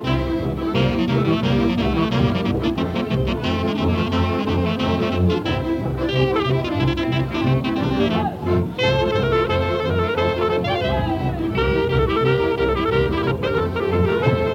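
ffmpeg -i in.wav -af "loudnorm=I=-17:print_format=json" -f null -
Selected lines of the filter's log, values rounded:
"input_i" : "-19.9",
"input_tp" : "-4.6",
"input_lra" : "1.3",
"input_thresh" : "-29.9",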